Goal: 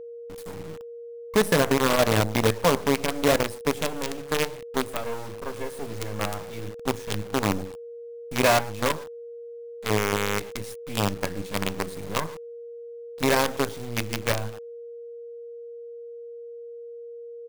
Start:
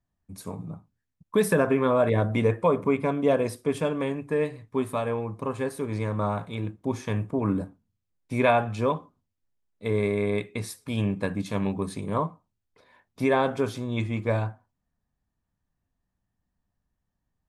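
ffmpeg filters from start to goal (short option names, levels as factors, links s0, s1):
-af "aecho=1:1:109:0.168,acrusher=bits=4:dc=4:mix=0:aa=0.000001,aeval=exprs='val(0)+0.0141*sin(2*PI*470*n/s)':c=same"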